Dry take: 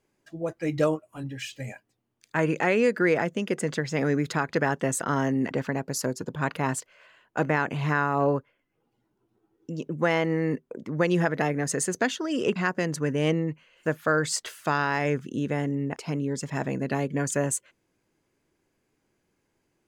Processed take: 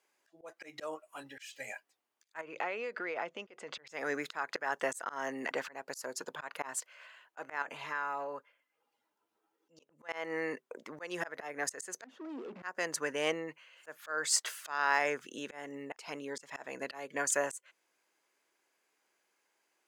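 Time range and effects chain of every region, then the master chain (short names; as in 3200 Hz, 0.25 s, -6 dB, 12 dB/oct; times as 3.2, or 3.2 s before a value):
2.41–3.87 LPF 3400 Hz + bell 1700 Hz -8 dB 0.44 oct + compressor, threshold -28 dBFS
7.62–10.09 notch comb 370 Hz + compressor 5:1, threshold -31 dBFS
12.04–12.63 compressor 5:1, threshold -31 dBFS + sample leveller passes 5 + band-pass 240 Hz, Q 2.6
whole clip: HPF 750 Hz 12 dB/oct; dynamic EQ 3300 Hz, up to -4 dB, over -41 dBFS, Q 1; auto swell 0.25 s; gain +1.5 dB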